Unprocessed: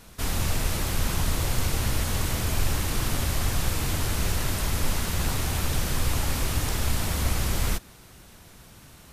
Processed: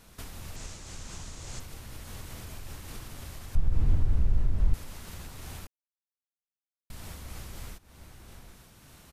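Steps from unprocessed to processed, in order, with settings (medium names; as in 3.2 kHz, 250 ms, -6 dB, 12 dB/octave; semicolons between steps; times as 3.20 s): 0.56–1.60 s: resonant low-pass 7 kHz, resonance Q 2.7; echo from a far wall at 130 m, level -20 dB; compression 4:1, threshold -35 dBFS, peak gain reduction 14 dB; 3.55–4.74 s: tilt EQ -4.5 dB/octave; 5.67–6.90 s: mute; random flutter of the level, depth 55%; trim -2 dB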